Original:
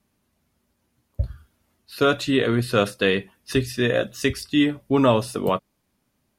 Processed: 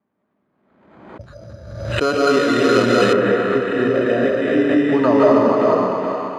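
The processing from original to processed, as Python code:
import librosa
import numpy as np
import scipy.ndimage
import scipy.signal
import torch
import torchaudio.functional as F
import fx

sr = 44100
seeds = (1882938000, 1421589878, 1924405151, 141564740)

y = scipy.signal.sosfilt(scipy.signal.butter(2, 210.0, 'highpass', fs=sr, output='sos'), x)
y = fx.echo_thinned(y, sr, ms=416, feedback_pct=63, hz=910.0, wet_db=-3.0)
y = fx.rev_freeverb(y, sr, rt60_s=2.5, hf_ratio=0.75, predelay_ms=120, drr_db=-6.0)
y = np.repeat(scipy.signal.resample_poly(y, 1, 8), 8)[:len(y)]
y = fx.lowpass(y, sr, hz=fx.steps((0.0, 1600.0), (1.21, 4600.0), (3.13, 1600.0)), slope=12)
y = fx.pre_swell(y, sr, db_per_s=52.0)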